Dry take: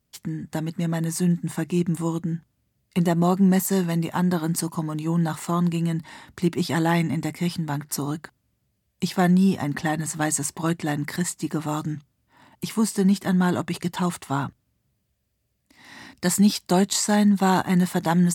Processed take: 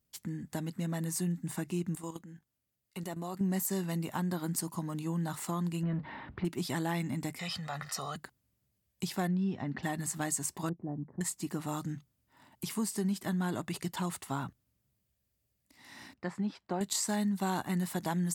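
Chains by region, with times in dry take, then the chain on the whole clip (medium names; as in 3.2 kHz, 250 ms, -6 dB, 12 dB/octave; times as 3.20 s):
1.95–3.41 s: bass shelf 280 Hz -9.5 dB + level held to a coarse grid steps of 10 dB
5.83–6.45 s: power-law waveshaper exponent 0.7 + Gaussian low-pass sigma 3.3 samples
7.39–8.16 s: three-band isolator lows -14 dB, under 560 Hz, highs -18 dB, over 5.8 kHz + comb 1.6 ms, depth 85% + level flattener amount 70%
9.27–9.83 s: Gaussian low-pass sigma 2.2 samples + peaking EQ 1.1 kHz -4 dB 0.91 oct
10.69–11.21 s: Bessel low-pass 540 Hz, order 4 + upward expansion, over -32 dBFS
16.14–16.81 s: low-pass 1.6 kHz + bass shelf 280 Hz -8.5 dB
whole clip: treble shelf 7.4 kHz +7 dB; compression 2:1, threshold -24 dBFS; trim -8 dB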